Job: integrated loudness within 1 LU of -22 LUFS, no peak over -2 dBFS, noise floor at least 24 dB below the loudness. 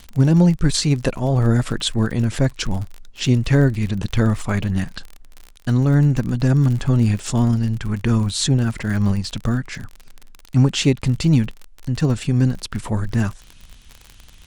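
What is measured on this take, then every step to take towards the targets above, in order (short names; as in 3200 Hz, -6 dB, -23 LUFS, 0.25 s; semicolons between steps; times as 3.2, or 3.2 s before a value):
ticks 43/s; loudness -19.5 LUFS; peak -4.0 dBFS; loudness target -22.0 LUFS
-> de-click; gain -2.5 dB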